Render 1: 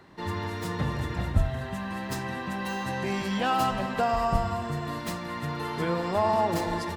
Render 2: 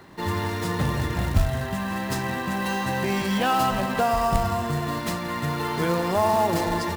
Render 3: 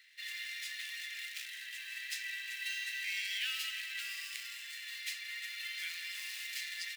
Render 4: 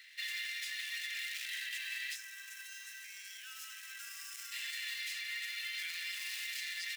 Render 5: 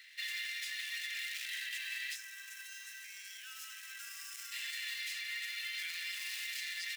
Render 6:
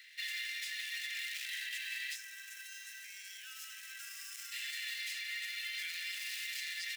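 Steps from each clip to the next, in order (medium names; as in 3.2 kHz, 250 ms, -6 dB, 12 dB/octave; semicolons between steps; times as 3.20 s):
in parallel at -1 dB: peak limiter -22 dBFS, peak gain reduction 11 dB; on the sum: short-mantissa float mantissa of 2-bit
steep high-pass 2 kHz 48 dB/octave; treble shelf 3.9 kHz -11 dB; trim +1 dB
peak limiter -35.5 dBFS, peak gain reduction 11 dB; gain riding 0.5 s; time-frequency box 2.15–4.52 s, 1.7–5.1 kHz -11 dB; trim +4.5 dB
no audible change
high-pass 1.3 kHz 24 dB/octave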